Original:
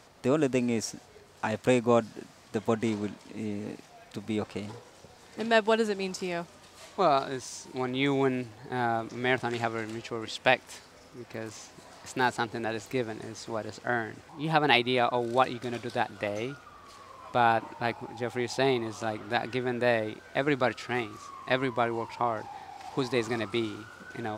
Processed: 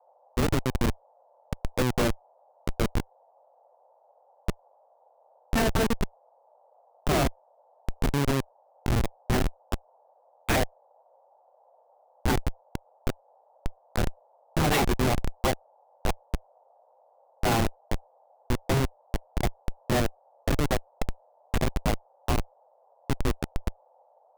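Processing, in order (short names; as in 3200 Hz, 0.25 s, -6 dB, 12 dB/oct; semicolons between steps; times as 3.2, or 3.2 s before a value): dispersion lows, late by 0.132 s, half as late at 980 Hz; Schmitt trigger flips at -22 dBFS; band noise 510–900 Hz -69 dBFS; gain +8 dB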